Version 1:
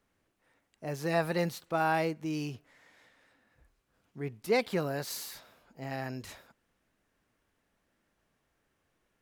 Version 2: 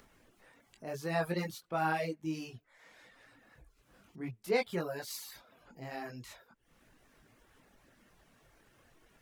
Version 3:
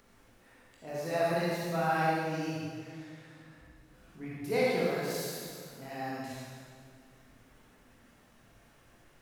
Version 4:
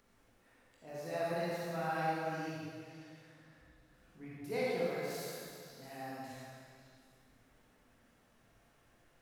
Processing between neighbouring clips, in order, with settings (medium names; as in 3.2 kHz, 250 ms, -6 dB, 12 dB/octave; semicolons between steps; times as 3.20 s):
chorus voices 6, 0.55 Hz, delay 21 ms, depth 4.8 ms; upward compressor, threshold -49 dBFS; reverb removal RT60 0.56 s
reverberation RT60 2.0 s, pre-delay 37 ms, DRR -6 dB; trim -3 dB
repeats whose band climbs or falls 183 ms, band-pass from 600 Hz, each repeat 1.4 oct, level -3.5 dB; trim -7.5 dB